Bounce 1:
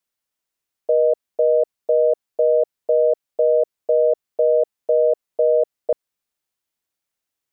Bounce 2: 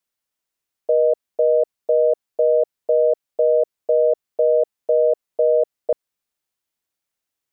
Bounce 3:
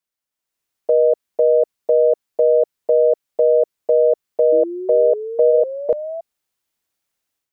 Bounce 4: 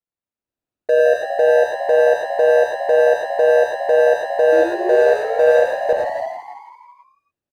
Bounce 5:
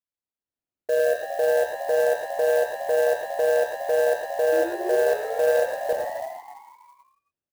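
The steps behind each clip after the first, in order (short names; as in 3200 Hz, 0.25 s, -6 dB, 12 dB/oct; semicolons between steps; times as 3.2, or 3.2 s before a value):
nothing audible
dynamic EQ 690 Hz, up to -3 dB, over -31 dBFS; AGC gain up to 9 dB; painted sound rise, 4.52–6.21, 320–670 Hz -23 dBFS; gain -4 dB
median filter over 41 samples; frequency-shifting echo 0.165 s, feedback 53%, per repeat +81 Hz, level -8 dB; non-linear reverb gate 0.13 s rising, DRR -0.5 dB
clock jitter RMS 0.022 ms; gain -7.5 dB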